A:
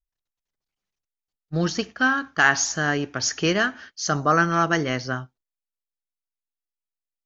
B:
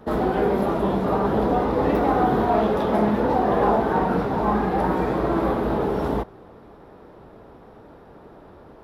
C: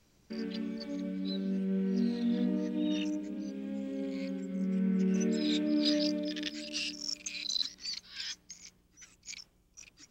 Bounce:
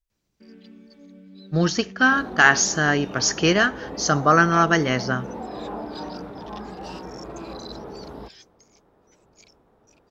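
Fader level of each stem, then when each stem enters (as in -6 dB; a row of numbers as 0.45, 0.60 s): +3.0, -14.5, -10.0 dB; 0.00, 2.05, 0.10 s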